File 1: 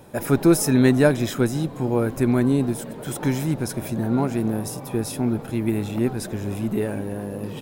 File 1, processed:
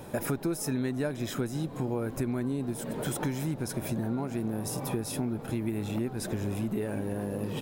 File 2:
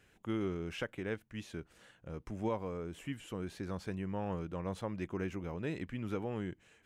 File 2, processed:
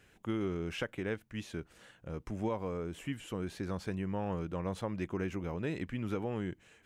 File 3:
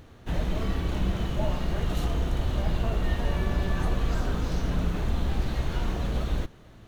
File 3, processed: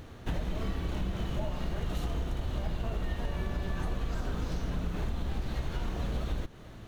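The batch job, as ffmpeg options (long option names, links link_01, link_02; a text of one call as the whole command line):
ffmpeg -i in.wav -af "acompressor=threshold=-32dB:ratio=6,volume=3dB" out.wav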